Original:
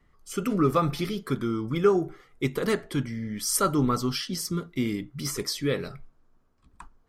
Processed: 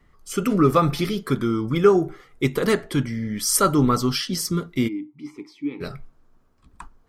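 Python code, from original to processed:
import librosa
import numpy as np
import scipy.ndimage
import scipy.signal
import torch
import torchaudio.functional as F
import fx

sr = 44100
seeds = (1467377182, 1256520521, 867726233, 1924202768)

y = fx.vowel_filter(x, sr, vowel='u', at=(4.87, 5.8), fade=0.02)
y = y * librosa.db_to_amplitude(5.5)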